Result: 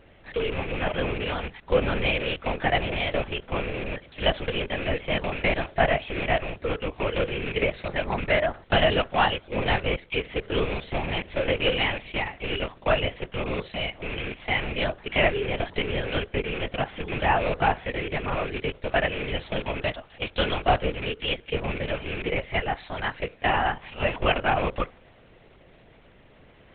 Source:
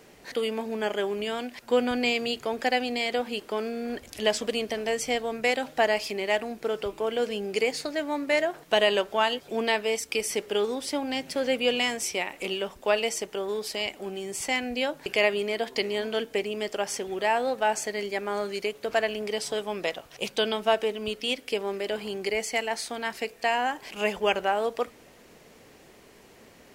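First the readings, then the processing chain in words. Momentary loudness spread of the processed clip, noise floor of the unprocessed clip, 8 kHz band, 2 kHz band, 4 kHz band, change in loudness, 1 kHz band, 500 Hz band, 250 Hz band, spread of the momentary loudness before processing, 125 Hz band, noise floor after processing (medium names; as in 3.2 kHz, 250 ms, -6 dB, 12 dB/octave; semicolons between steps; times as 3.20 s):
7 LU, -53 dBFS, under -40 dB, +2.5 dB, 0.0 dB, +1.0 dB, +2.5 dB, -0.5 dB, +1.0 dB, 7 LU, no reading, -54 dBFS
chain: rattle on loud lows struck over -39 dBFS, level -21 dBFS; dynamic bell 1.2 kHz, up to +4 dB, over -39 dBFS, Q 0.84; LPC vocoder at 8 kHz whisper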